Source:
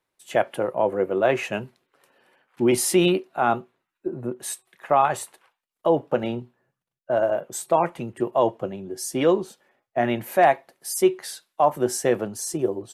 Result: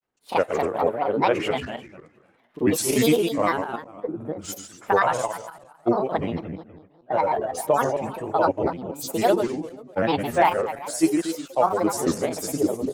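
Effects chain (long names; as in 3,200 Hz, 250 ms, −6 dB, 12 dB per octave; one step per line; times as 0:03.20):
feedback delay that plays each chunk backwards 117 ms, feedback 53%, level −6 dB
granular cloud, spray 32 ms, pitch spread up and down by 7 semitones
one half of a high-frequency compander decoder only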